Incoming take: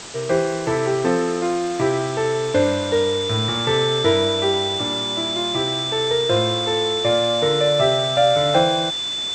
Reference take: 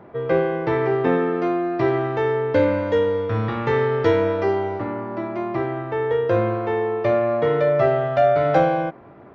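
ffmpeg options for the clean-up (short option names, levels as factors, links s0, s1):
-af "adeclick=t=4,bandreject=f=3500:w=30,afwtdn=0.022"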